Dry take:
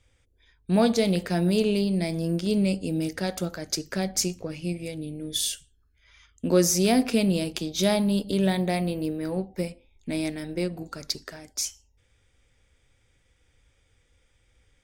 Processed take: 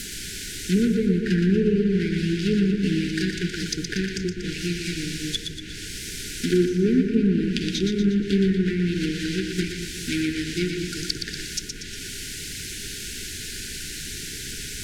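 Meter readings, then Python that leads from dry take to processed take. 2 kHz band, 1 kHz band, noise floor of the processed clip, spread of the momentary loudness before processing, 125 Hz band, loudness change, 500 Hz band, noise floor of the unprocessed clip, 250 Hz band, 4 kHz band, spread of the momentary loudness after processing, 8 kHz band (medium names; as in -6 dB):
+6.0 dB, under -10 dB, -35 dBFS, 12 LU, +4.0 dB, +1.0 dB, 0.0 dB, -66 dBFS, +3.5 dB, +3.0 dB, 11 LU, -0.5 dB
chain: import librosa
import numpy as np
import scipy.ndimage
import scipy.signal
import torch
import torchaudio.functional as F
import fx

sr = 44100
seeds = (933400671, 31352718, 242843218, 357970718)

p1 = fx.block_float(x, sr, bits=3)
p2 = fx.dmg_noise_colour(p1, sr, seeds[0], colour='pink', level_db=-40.0)
p3 = fx.high_shelf(p2, sr, hz=2800.0, db=11.5)
p4 = fx.env_lowpass_down(p3, sr, base_hz=870.0, full_db=-16.5)
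p5 = np.clip(p4, -10.0 ** (-16.5 / 20.0), 10.0 ** (-16.5 / 20.0))
p6 = p4 + (p5 * librosa.db_to_amplitude(-12.0))
p7 = fx.brickwall_bandstop(p6, sr, low_hz=460.0, high_hz=1400.0)
y = p7 + fx.echo_split(p7, sr, split_hz=320.0, low_ms=201, high_ms=119, feedback_pct=52, wet_db=-5.5, dry=0)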